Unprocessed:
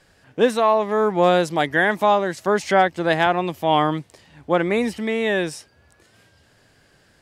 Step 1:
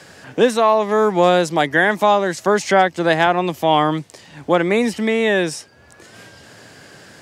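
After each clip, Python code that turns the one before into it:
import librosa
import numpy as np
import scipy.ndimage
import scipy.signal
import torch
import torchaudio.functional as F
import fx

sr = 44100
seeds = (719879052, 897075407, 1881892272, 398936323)

y = scipy.signal.sosfilt(scipy.signal.butter(2, 98.0, 'highpass', fs=sr, output='sos'), x)
y = fx.peak_eq(y, sr, hz=6500.0, db=4.5, octaves=0.85)
y = fx.band_squash(y, sr, depth_pct=40)
y = F.gain(torch.from_numpy(y), 3.0).numpy()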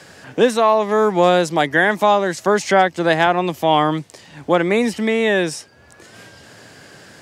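y = x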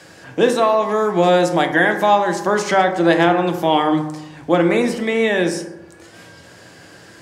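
y = fx.rev_fdn(x, sr, rt60_s=1.0, lf_ratio=1.05, hf_ratio=0.4, size_ms=18.0, drr_db=4.5)
y = F.gain(torch.from_numpy(y), -1.5).numpy()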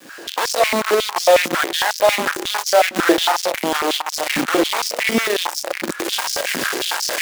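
y = fx.recorder_agc(x, sr, target_db=-8.5, rise_db_per_s=61.0, max_gain_db=30)
y = fx.quant_companded(y, sr, bits=2)
y = fx.filter_held_highpass(y, sr, hz=11.0, low_hz=240.0, high_hz=5200.0)
y = F.gain(torch.from_numpy(y), -12.5).numpy()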